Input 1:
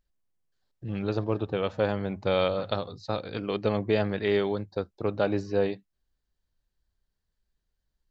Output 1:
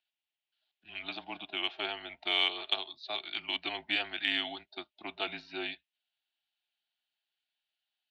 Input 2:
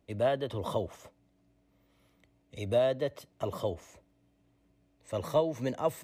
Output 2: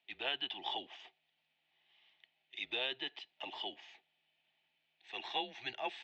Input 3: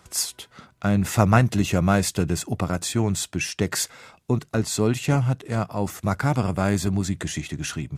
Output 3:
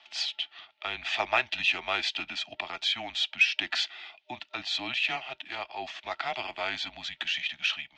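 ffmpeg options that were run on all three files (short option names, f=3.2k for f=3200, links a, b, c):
-filter_complex "[0:a]superequalizer=8b=0.316:9b=2.51:11b=1.58,highpass=f=170:t=q:w=0.5412,highpass=f=170:t=q:w=1.307,lowpass=f=3.3k:t=q:w=0.5176,lowpass=f=3.3k:t=q:w=0.7071,lowpass=f=3.3k:t=q:w=1.932,afreqshift=-130,aderivative,acrossover=split=340|610|2500[a][b][c][d];[b]acontrast=86[e];[a][e][c][d]amix=inputs=4:normalize=0,aexciter=amount=2.9:drive=8.8:freq=2.3k,volume=6.5dB"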